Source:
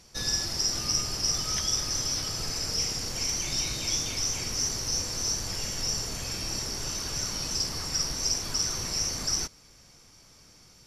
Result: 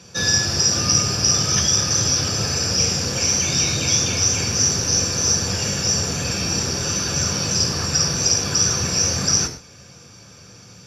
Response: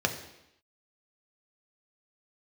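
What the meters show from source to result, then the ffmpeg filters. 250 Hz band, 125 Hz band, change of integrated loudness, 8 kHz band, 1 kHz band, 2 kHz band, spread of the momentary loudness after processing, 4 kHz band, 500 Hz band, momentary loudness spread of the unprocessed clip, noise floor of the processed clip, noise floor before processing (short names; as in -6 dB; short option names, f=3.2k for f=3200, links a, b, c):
+14.0 dB, +14.5 dB, +10.0 dB, +11.0 dB, +11.0 dB, +12.5 dB, 5 LU, +9.0 dB, +13.0 dB, 5 LU, -45 dBFS, -56 dBFS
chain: -filter_complex "[1:a]atrim=start_sample=2205,atrim=end_sample=6174[a];[0:a][a]afir=irnorm=-1:irlink=0,volume=2dB"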